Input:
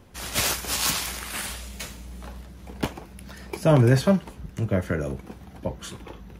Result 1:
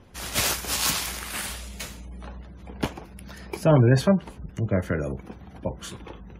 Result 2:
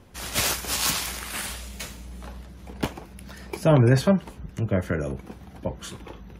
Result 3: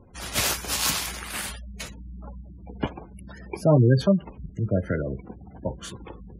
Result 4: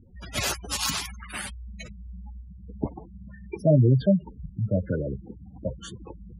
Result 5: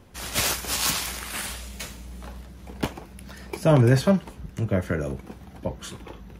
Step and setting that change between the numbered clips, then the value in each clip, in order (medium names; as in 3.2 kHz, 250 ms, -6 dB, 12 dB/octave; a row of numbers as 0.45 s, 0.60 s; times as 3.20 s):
spectral gate, under each frame's peak: -35 dB, -45 dB, -20 dB, -10 dB, -60 dB